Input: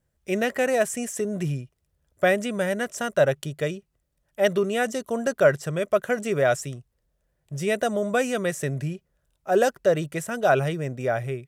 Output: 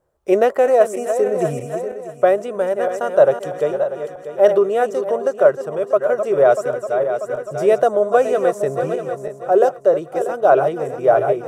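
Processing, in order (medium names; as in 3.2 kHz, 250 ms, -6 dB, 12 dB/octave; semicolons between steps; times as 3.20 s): backward echo that repeats 320 ms, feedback 63%, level -8.5 dB; high-order bell 660 Hz +15 dB 2.3 oct; level rider; trim -1 dB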